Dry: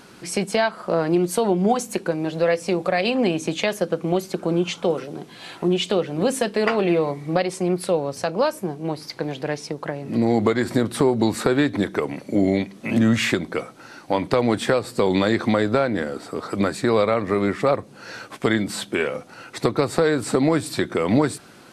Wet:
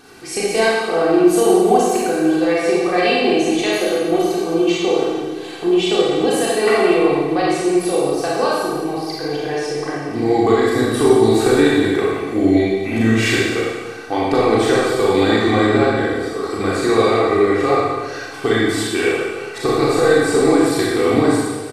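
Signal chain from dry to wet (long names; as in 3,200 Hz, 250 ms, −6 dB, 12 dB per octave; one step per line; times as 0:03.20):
comb filter 2.6 ms, depth 68%
convolution reverb RT60 1.4 s, pre-delay 28 ms, DRR −6 dB
level −2.5 dB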